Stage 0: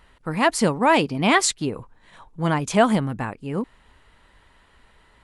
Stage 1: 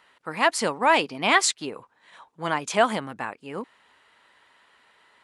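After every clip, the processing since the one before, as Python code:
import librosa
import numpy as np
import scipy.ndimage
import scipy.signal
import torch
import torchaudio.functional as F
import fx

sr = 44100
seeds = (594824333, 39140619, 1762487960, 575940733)

y = fx.weighting(x, sr, curve='A')
y = y * 10.0 ** (-1.0 / 20.0)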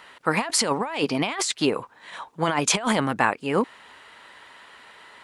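y = fx.over_compress(x, sr, threshold_db=-30.0, ratio=-1.0)
y = y * 10.0 ** (6.0 / 20.0)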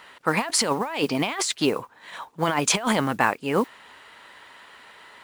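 y = fx.mod_noise(x, sr, seeds[0], snr_db=26)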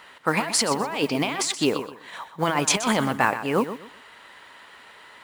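y = fx.echo_feedback(x, sr, ms=125, feedback_pct=25, wet_db=-11.5)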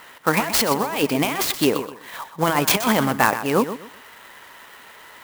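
y = fx.clock_jitter(x, sr, seeds[1], jitter_ms=0.033)
y = y * 10.0 ** (3.5 / 20.0)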